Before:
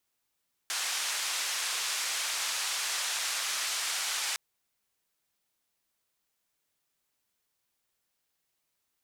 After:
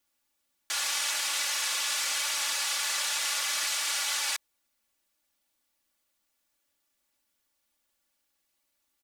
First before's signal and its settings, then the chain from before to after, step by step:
band-limited noise 1,000–7,800 Hz, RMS −32.5 dBFS 3.66 s
comb filter 3.5 ms, depth 84%

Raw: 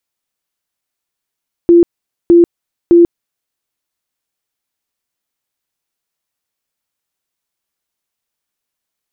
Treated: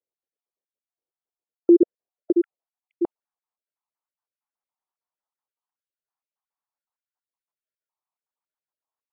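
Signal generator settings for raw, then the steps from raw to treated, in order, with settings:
tone bursts 343 Hz, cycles 48, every 0.61 s, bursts 3, −2.5 dBFS
time-frequency cells dropped at random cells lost 47%
band-pass filter sweep 460 Hz → 940 Hz, 0:01.73–0:03.35
one half of a high-frequency compander decoder only

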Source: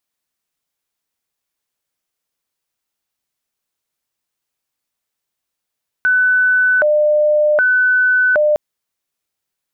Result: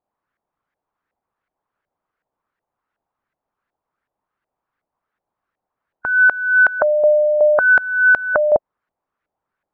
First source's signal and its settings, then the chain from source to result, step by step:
siren hi-lo 601–1,500 Hz 0.65 per second sine −10 dBFS 2.51 s
brickwall limiter −14.5 dBFS
harmonic and percussive parts rebalanced percussive +8 dB
auto-filter low-pass saw up 2.7 Hz 680–1,700 Hz

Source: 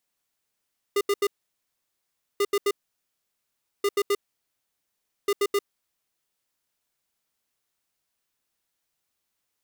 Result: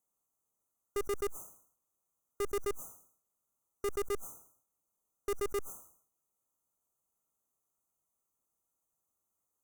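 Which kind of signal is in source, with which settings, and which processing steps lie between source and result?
beeps in groups square 404 Hz, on 0.05 s, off 0.08 s, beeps 3, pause 1.13 s, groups 4, −22 dBFS
brick-wall band-stop 1,400–5,900 Hz
tube saturation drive 31 dB, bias 0.65
level that may fall only so fast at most 100 dB per second

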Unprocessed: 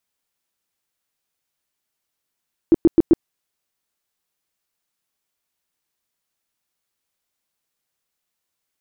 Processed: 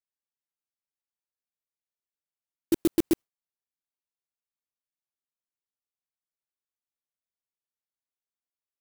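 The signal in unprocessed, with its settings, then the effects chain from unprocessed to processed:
tone bursts 331 Hz, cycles 8, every 0.13 s, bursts 4, −7 dBFS
noise gate with hold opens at −10 dBFS
brickwall limiter −15.5 dBFS
converter with an unsteady clock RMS 0.099 ms

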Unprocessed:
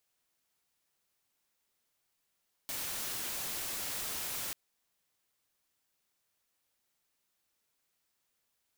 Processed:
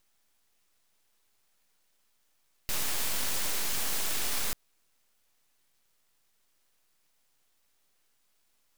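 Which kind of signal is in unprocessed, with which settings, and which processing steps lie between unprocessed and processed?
noise white, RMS −38 dBFS 1.84 s
high-shelf EQ 6,300 Hz +12 dB
full-wave rectification

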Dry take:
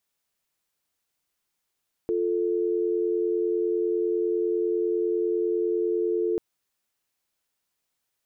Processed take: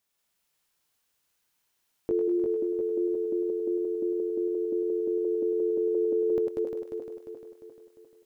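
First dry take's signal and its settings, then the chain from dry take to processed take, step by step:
call progress tone dial tone, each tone −25 dBFS 4.29 s
feedback delay that plays each chunk backwards 175 ms, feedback 70%, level −3.5 dB
feedback echo with a high-pass in the loop 102 ms, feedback 63%, high-pass 610 Hz, level −4 dB

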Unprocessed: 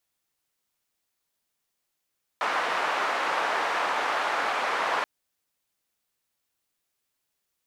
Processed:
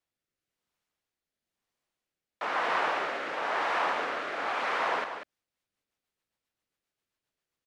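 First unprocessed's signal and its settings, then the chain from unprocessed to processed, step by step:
band-limited noise 790–1,100 Hz, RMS −27 dBFS 2.63 s
low-pass filter 2,800 Hz 6 dB per octave
rotating-speaker cabinet horn 1 Hz, later 7.5 Hz, at 0:05.01
on a send: single-tap delay 192 ms −8.5 dB

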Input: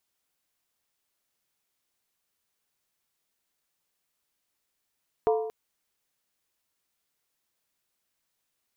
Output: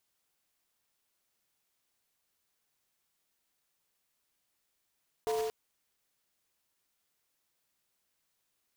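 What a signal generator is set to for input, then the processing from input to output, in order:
struck skin length 0.23 s, lowest mode 440 Hz, decay 0.89 s, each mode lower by 5.5 dB, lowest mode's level −19 dB
one scale factor per block 3 bits
brickwall limiter −26 dBFS

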